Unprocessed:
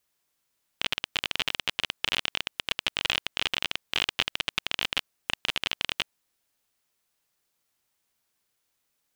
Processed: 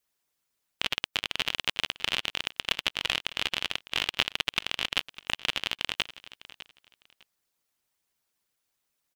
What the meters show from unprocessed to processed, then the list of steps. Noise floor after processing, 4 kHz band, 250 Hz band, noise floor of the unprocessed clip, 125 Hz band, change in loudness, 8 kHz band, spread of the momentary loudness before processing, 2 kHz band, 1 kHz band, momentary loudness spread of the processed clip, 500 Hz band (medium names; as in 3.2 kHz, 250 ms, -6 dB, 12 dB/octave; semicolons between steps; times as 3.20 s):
-82 dBFS, -0.5 dB, -0.5 dB, -77 dBFS, -0.5 dB, -0.5 dB, -0.5 dB, 4 LU, -0.5 dB, -0.5 dB, 6 LU, -0.5 dB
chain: harmonic-percussive split harmonic -13 dB; on a send: feedback delay 604 ms, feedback 21%, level -17 dB; on the sum: trim +1 dB